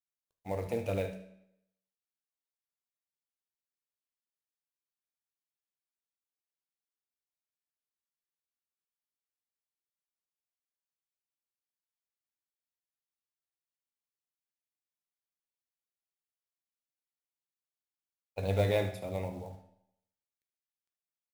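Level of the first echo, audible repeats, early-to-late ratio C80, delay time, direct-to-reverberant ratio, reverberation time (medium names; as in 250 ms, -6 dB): -13.0 dB, 1, 12.0 dB, 74 ms, 5.0 dB, 0.75 s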